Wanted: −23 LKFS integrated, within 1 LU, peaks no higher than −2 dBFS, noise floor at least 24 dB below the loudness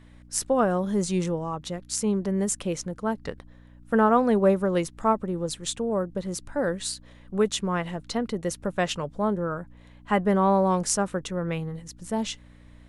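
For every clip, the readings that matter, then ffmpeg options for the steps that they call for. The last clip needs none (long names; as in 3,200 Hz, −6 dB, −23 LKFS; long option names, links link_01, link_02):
mains hum 60 Hz; hum harmonics up to 300 Hz; level of the hum −50 dBFS; integrated loudness −26.5 LKFS; sample peak −7.0 dBFS; target loudness −23.0 LKFS
→ -af "bandreject=frequency=60:width_type=h:width=4,bandreject=frequency=120:width_type=h:width=4,bandreject=frequency=180:width_type=h:width=4,bandreject=frequency=240:width_type=h:width=4,bandreject=frequency=300:width_type=h:width=4"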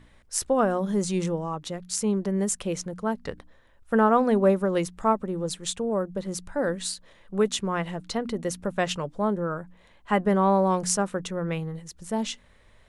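mains hum none found; integrated loudness −26.5 LKFS; sample peak −7.0 dBFS; target loudness −23.0 LKFS
→ -af "volume=3.5dB"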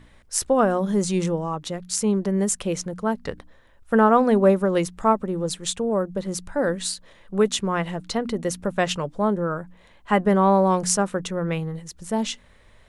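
integrated loudness −23.0 LKFS; sample peak −3.5 dBFS; background noise floor −54 dBFS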